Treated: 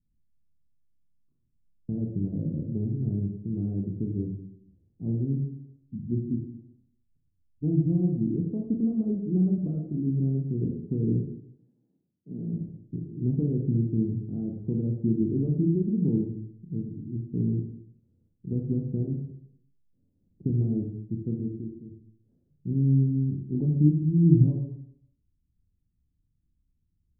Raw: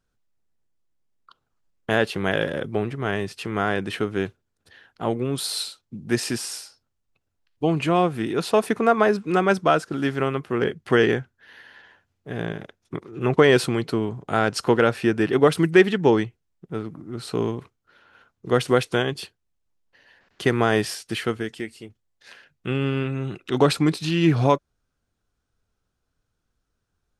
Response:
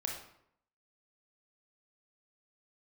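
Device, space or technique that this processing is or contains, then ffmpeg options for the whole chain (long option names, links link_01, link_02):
club heard from the street: -filter_complex "[0:a]asettb=1/sr,asplit=3[link_01][link_02][link_03];[link_01]atrim=end=11.204[link_04];[link_02]atrim=start=11.2:end=12.53,asetpts=PTS-STARTPTS,afade=type=in:duration=0.004:curve=qsin,afade=type=out:start_time=1.326:duration=0.004:curve=qsin,highpass=frequency=170:width=0.5412,highpass=frequency=170:width=1.3066[link_05];[link_03]atrim=start=12.526[link_06];[link_04][link_05]acrossfade=duration=0.004:curve1=hsin:curve2=qsin[link_07];[link_07][link_06]acrossfade=duration=0.004:curve1=qsin:curve2=hsin,alimiter=limit=-9.5dB:level=0:latency=1:release=79,lowpass=frequency=250:width=0.5412,lowpass=frequency=250:width=1.3066[link_08];[1:a]atrim=start_sample=2205[link_09];[link_08][link_09]afir=irnorm=-1:irlink=0,volume=2dB"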